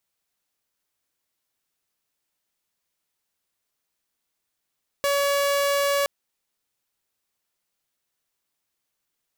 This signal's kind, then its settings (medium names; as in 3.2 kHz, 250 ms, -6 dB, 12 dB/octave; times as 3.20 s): tone saw 565 Hz -17.5 dBFS 1.02 s